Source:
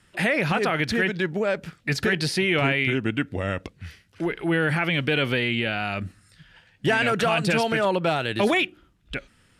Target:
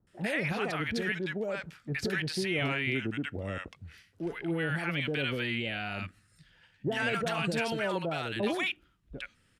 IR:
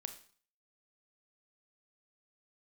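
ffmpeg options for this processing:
-filter_complex "[0:a]acrossover=split=820[link_01][link_02];[link_02]adelay=70[link_03];[link_01][link_03]amix=inputs=2:normalize=0,volume=-8dB"

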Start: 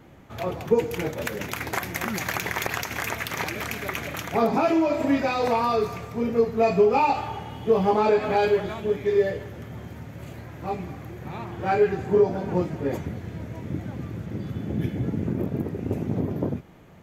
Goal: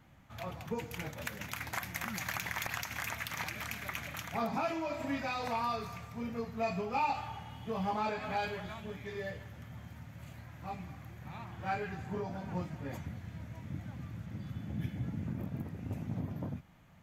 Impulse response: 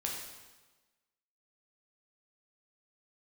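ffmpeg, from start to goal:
-af "equalizer=frequency=400:width_type=o:width=0.94:gain=-14.5,volume=-8dB"

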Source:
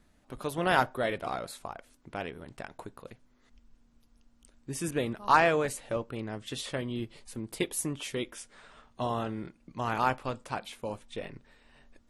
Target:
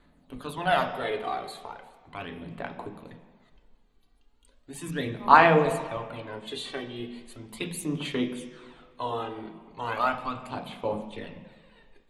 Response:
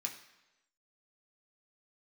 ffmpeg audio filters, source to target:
-filter_complex "[0:a]aphaser=in_gain=1:out_gain=1:delay=2.6:decay=0.61:speed=0.37:type=sinusoidal,asplit=2[link_01][link_02];[link_02]highpass=160,equalizer=frequency=170:width_type=q:width=4:gain=10,equalizer=frequency=240:width_type=q:width=4:gain=9,equalizer=frequency=1400:width_type=q:width=4:gain=-8,lowpass=frequency=5400:width=0.5412,lowpass=frequency=5400:width=1.3066[link_03];[1:a]atrim=start_sample=2205,asetrate=25137,aresample=44100[link_04];[link_03][link_04]afir=irnorm=-1:irlink=0,volume=0.5dB[link_05];[link_01][link_05]amix=inputs=2:normalize=0,volume=-6.5dB"

